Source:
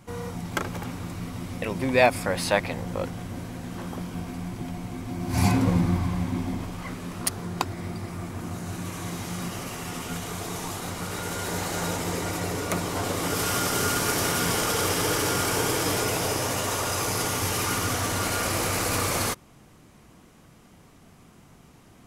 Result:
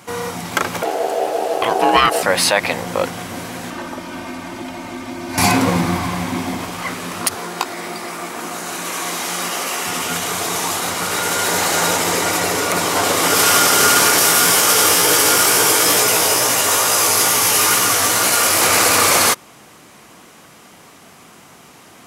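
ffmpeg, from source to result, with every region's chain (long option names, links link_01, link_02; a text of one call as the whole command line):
ffmpeg -i in.wav -filter_complex "[0:a]asettb=1/sr,asplit=3[link_01][link_02][link_03];[link_01]atrim=end=0.824[link_04];[link_02]atrim=start=0.82:end=2.23,asetpts=PTS-STARTPTS,afade=type=in:duration=0.004:curve=qsin,afade=type=out:start_time=1.406:duration=0.004:curve=qsin,lowshelf=frequency=150:gain=11.5,bandreject=frequency=1200:width=9.5,aeval=exprs='val(0)*sin(2*PI*570*n/s)':channel_layout=same[link_05];[link_03]atrim=start=2.226[link_06];[link_04][link_05]acrossfade=duration=0.004:curve1=hsin:curve2=qsin[link_07];[link_07][link_06]acrossfade=duration=0.004:curve1=qsin:curve2=hsin,asettb=1/sr,asplit=3[link_08][link_09][link_10];[link_08]atrim=end=3.704[link_11];[link_09]atrim=start=3.7:end=5.38,asetpts=PTS-STARTPTS,afade=type=in:duration=0.004:curve=qsin,afade=type=out:start_time=1.676:duration=0.004:curve=qsin,aecho=1:1:3.3:0.72,atrim=end_sample=74088,acrossover=split=110|260|3000[link_12][link_13][link_14][link_15];[link_12]acompressor=threshold=-41dB:ratio=3[link_16];[link_13]acompressor=threshold=-42dB:ratio=3[link_17];[link_14]acompressor=threshold=-39dB:ratio=3[link_18];[link_15]acompressor=threshold=-51dB:ratio=3[link_19];[link_16][link_17][link_18][link_19]amix=inputs=4:normalize=0,highshelf=frequency=6500:gain=-10[link_20];[link_10]atrim=start=5.376[link_21];[link_11][link_20]acrossfade=duration=0.004:curve1=hsin:curve2=qsin[link_22];[link_22][link_21]acrossfade=duration=0.004:curve1=qsin:curve2=hsin,asettb=1/sr,asplit=3[link_23][link_24][link_25];[link_23]atrim=end=7.354[link_26];[link_24]atrim=start=7.35:end=9.86,asetpts=PTS-STARTPTS,afade=type=in:duration=0.004:curve=qsin,afade=type=out:start_time=2.506:duration=0.004:curve=qsin,highpass=270,asplit=2[link_27][link_28];[link_28]adelay=17,volume=-11.5dB[link_29];[link_27][link_29]amix=inputs=2:normalize=0,atrim=end_sample=110691[link_30];[link_25]atrim=start=9.856[link_31];[link_26][link_30]acrossfade=duration=0.004:curve1=hsin:curve2=qsin[link_32];[link_32][link_31]acrossfade=duration=0.004:curve1=qsin:curve2=hsin,asettb=1/sr,asplit=3[link_33][link_34][link_35];[link_33]atrim=end=14.194[link_36];[link_34]atrim=start=14.19:end=18.62,asetpts=PTS-STARTPTS,afade=type=in:duration=0.004:curve=qsin,afade=type=out:start_time=4.426:duration=0.004:curve=qsin,highshelf=frequency=7500:gain=6.5,flanger=delay=16.5:depth=2.6:speed=2.2[link_37];[link_35]atrim=start=18.616[link_38];[link_36][link_37]acrossfade=duration=0.004:curve1=hsin:curve2=qsin[link_39];[link_39][link_38]acrossfade=duration=0.004:curve1=qsin:curve2=hsin,highpass=frequency=650:poles=1,alimiter=level_in=16dB:limit=-1dB:release=50:level=0:latency=1,volume=-1dB" out.wav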